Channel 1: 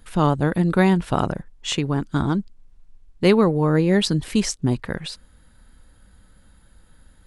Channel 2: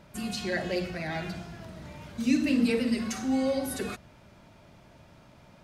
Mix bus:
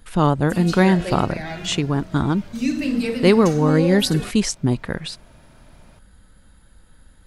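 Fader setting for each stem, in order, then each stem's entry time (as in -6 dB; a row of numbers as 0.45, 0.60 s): +1.5, +2.5 dB; 0.00, 0.35 s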